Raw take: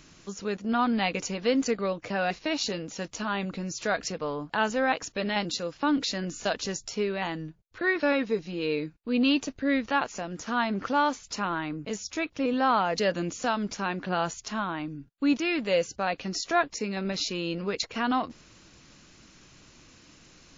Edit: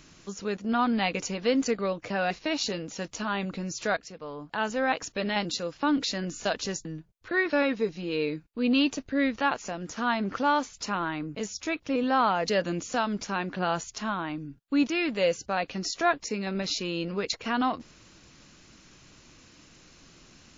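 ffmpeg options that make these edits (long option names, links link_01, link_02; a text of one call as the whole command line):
ffmpeg -i in.wav -filter_complex "[0:a]asplit=3[link_01][link_02][link_03];[link_01]atrim=end=3.97,asetpts=PTS-STARTPTS,afade=type=out:start_time=3.966:duration=0.004:curve=hsin:silence=0.188365[link_04];[link_02]atrim=start=3.97:end=6.852,asetpts=PTS-STARTPTS,afade=type=in:duration=1.02:silence=0.188365[link_05];[link_03]atrim=start=7.348[link_06];[link_04][link_05]concat=n=2:v=0:a=1[link_07];[link_07][link_06]acrossfade=duration=0.004:curve1=hsin:curve2=hsin" out.wav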